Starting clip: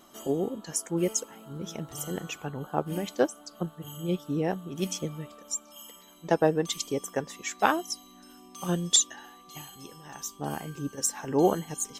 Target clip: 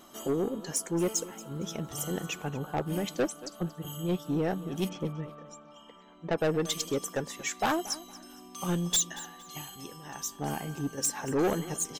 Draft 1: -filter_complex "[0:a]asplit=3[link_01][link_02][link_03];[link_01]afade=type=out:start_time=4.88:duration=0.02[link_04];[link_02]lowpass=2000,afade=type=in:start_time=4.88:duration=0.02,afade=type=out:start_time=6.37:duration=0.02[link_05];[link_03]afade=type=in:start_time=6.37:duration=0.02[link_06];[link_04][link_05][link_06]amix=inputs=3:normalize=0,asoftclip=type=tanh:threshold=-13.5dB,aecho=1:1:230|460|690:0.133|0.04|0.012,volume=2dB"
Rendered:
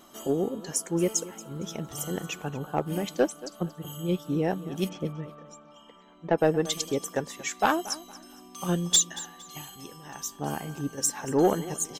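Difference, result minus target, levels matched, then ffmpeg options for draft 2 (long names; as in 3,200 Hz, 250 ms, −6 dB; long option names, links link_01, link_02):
soft clipping: distortion −10 dB
-filter_complex "[0:a]asplit=3[link_01][link_02][link_03];[link_01]afade=type=out:start_time=4.88:duration=0.02[link_04];[link_02]lowpass=2000,afade=type=in:start_time=4.88:duration=0.02,afade=type=out:start_time=6.37:duration=0.02[link_05];[link_03]afade=type=in:start_time=6.37:duration=0.02[link_06];[link_04][link_05][link_06]amix=inputs=3:normalize=0,asoftclip=type=tanh:threshold=-24dB,aecho=1:1:230|460|690:0.133|0.04|0.012,volume=2dB"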